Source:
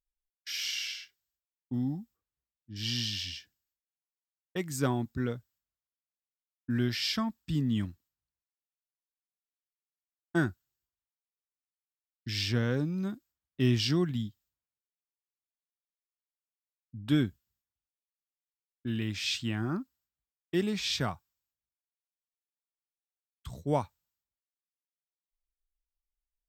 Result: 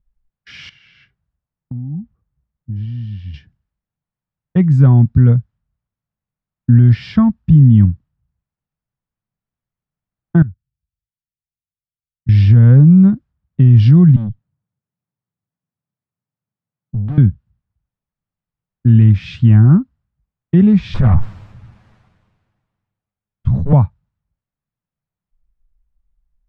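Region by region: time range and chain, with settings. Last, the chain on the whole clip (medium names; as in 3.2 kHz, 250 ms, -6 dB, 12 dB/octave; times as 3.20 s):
0.69–3.34 s: treble shelf 4 kHz -10 dB + compression 20:1, threshold -46 dBFS
10.42–12.29 s: amplifier tone stack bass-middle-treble 6-0-2 + compression 1.5:1, threshold -58 dBFS
14.16–17.18 s: high-pass 110 Hz 24 dB/octave + tilt EQ -1.5 dB/octave + valve stage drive 43 dB, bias 0.5
20.94–23.73 s: comb filter that takes the minimum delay 9.4 ms + decay stretcher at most 31 dB/s
whole clip: Bessel low-pass 1.1 kHz, order 2; resonant low shelf 230 Hz +13 dB, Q 1.5; loudness maximiser +15 dB; trim -1 dB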